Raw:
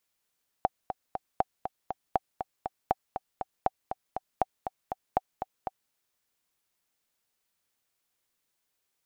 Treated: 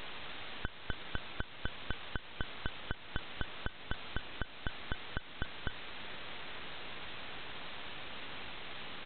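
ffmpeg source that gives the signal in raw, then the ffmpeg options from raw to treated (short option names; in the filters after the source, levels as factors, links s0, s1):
-f lavfi -i "aevalsrc='pow(10,(-10-8.5*gte(mod(t,3*60/239),60/239))/20)*sin(2*PI*759*mod(t,60/239))*exp(-6.91*mod(t,60/239)/0.03)':d=5.27:s=44100"
-af "aeval=exprs='val(0)+0.5*0.0398*sgn(val(0))':c=same,alimiter=limit=0.1:level=0:latency=1:release=380,aresample=8000,aeval=exprs='abs(val(0))':c=same,aresample=44100"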